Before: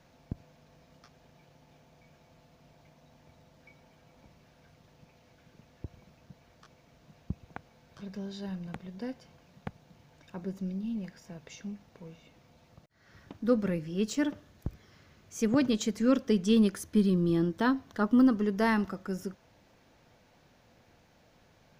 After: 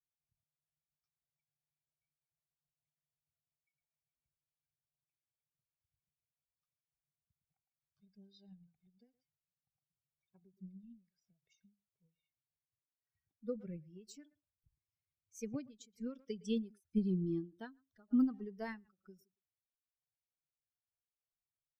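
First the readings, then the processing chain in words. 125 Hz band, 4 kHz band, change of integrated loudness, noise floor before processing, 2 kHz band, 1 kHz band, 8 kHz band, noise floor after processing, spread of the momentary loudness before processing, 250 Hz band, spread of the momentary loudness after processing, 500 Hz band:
−12.0 dB, −17.0 dB, −9.5 dB, −63 dBFS, −19.0 dB, −21.0 dB, −16.5 dB, below −85 dBFS, 21 LU, −12.0 dB, 21 LU, −15.0 dB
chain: spectral dynamics exaggerated over time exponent 2
low-shelf EQ 380 Hz +3 dB
rotating-speaker cabinet horn 7 Hz, later 1 Hz, at 0:11.25
far-end echo of a speakerphone 110 ms, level −24 dB
every ending faded ahead of time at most 190 dB per second
level −7 dB

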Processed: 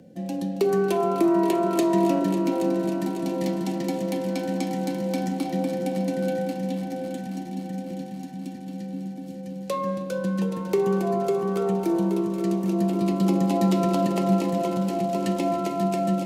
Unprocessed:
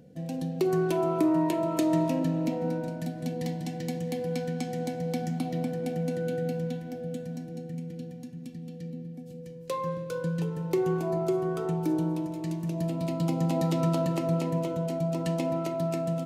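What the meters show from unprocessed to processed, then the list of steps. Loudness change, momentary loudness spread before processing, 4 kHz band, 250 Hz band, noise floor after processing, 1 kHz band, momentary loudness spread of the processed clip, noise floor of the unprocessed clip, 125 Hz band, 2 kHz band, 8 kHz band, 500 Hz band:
+5.0 dB, 12 LU, +5.0 dB, +5.5 dB, −36 dBFS, +6.5 dB, 12 LU, −42 dBFS, +0.5 dB, +4.5 dB, +5.0 dB, +5.0 dB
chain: echo machine with several playback heads 275 ms, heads all three, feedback 70%, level −14.5 dB
frequency shifter +25 Hz
level +4 dB

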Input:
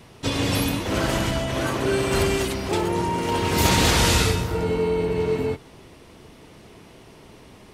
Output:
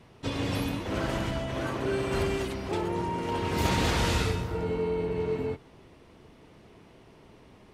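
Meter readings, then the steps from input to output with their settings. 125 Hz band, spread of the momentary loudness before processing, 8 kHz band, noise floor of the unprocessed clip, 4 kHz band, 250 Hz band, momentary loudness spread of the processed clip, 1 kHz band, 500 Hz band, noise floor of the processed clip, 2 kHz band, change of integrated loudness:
−6.5 dB, 7 LU, −14.0 dB, −48 dBFS, −10.5 dB, −6.5 dB, 6 LU, −7.0 dB, −6.5 dB, −55 dBFS, −8.0 dB, −7.5 dB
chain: high-shelf EQ 4,500 Hz −10 dB
level −6.5 dB

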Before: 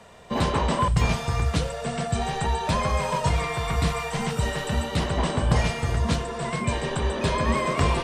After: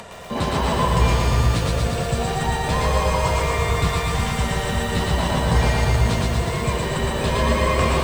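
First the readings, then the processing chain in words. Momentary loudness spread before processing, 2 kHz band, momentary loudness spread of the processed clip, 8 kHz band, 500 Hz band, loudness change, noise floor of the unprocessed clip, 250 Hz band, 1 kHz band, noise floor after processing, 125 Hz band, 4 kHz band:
5 LU, +4.5 dB, 4 LU, +5.0 dB, +4.5 dB, +4.5 dB, −33 dBFS, +3.0 dB, +3.5 dB, −25 dBFS, +4.5 dB, +4.5 dB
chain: upward compression, threshold −30 dBFS
echo with a time of its own for lows and highs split 430 Hz, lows 360 ms, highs 112 ms, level −3 dB
feedback echo at a low word length 121 ms, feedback 80%, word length 7 bits, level −4.5 dB

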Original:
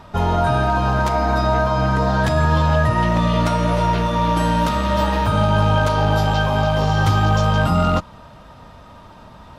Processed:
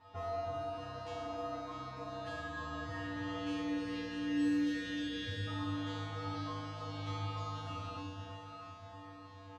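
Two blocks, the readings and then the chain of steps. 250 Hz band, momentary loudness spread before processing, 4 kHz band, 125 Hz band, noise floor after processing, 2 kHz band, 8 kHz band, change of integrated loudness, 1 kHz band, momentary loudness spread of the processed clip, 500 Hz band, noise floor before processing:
−15.5 dB, 2 LU, −17.5 dB, −25.5 dB, −52 dBFS, −20.5 dB, −21.0 dB, −21.5 dB, −24.5 dB, 13 LU, −22.5 dB, −43 dBFS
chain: notch filter 1,500 Hz, Q 11
gain on a spectral selection 0:03.40–0:05.47, 600–1,400 Hz −30 dB
low-pass filter 5,200 Hz 12 dB per octave
parametric band 68 Hz −11 dB 1.2 octaves
mains-hum notches 50/100/150/200/250/300 Hz
downward compressor, threshold −22 dBFS, peak gain reduction 7.5 dB
tuned comb filter 97 Hz, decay 1.6 s, harmonics odd, mix 100%
hard clipping −35.5 dBFS, distortion −34 dB
double-tracking delay 38 ms −14 dB
delay that swaps between a low-pass and a high-pass 320 ms, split 1,100 Hz, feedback 70%, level −5 dB
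level +8.5 dB

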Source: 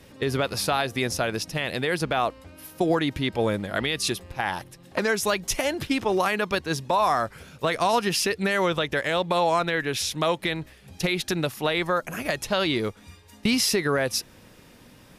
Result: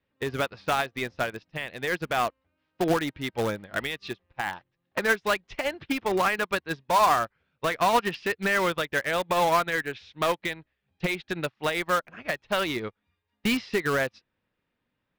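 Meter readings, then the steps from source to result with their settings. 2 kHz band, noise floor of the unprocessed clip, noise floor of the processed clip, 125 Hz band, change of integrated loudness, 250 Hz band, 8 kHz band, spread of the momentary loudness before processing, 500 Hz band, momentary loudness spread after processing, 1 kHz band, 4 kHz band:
0.0 dB, −52 dBFS, −80 dBFS, −6.0 dB, −2.0 dB, −4.5 dB, −9.0 dB, 7 LU, −3.0 dB, 10 LU, 0.0 dB, −6.0 dB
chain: low-pass filter 4,000 Hz 24 dB per octave
parametric band 1,600 Hz +5 dB 1.8 octaves
in parallel at −10 dB: wrap-around overflow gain 16.5 dB
on the sum: expander for the loud parts 2.5 to 1, over −38 dBFS

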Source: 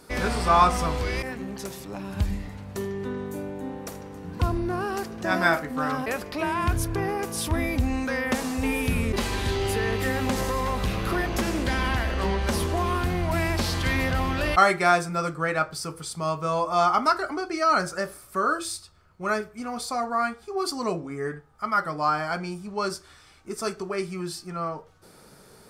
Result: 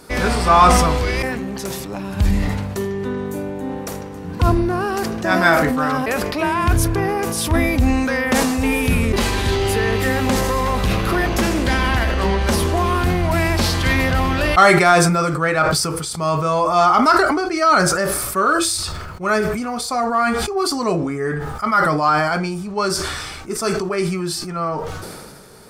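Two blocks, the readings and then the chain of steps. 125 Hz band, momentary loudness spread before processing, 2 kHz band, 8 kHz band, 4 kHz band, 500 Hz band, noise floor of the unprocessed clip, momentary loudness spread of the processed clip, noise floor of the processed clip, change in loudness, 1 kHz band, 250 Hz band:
+8.5 dB, 12 LU, +8.0 dB, +11.0 dB, +9.0 dB, +8.5 dB, −52 dBFS, 12 LU, −31 dBFS, +8.0 dB, +7.5 dB, +9.0 dB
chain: in parallel at −4 dB: soft clipping −15 dBFS, distortion −17 dB
on the sum: level that may fall only so fast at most 29 dB per second
level +3 dB

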